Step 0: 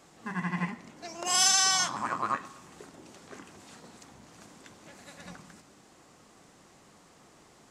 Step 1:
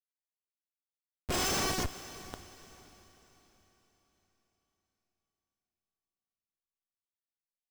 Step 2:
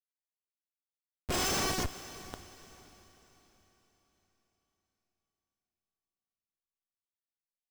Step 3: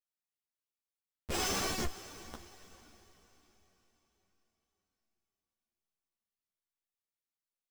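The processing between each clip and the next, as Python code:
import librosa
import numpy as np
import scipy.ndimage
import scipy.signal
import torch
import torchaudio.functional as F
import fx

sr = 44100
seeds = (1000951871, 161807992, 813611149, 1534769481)

y1 = fx.tilt_shelf(x, sr, db=-10.0, hz=810.0)
y1 = fx.schmitt(y1, sr, flips_db=-14.0)
y1 = fx.echo_diffused(y1, sr, ms=481, feedback_pct=41, wet_db=-15.5)
y1 = y1 * 10.0 ** (-4.0 / 20.0)
y2 = y1
y3 = fx.doubler(y2, sr, ms=17.0, db=-11.5)
y3 = fx.ensemble(y3, sr)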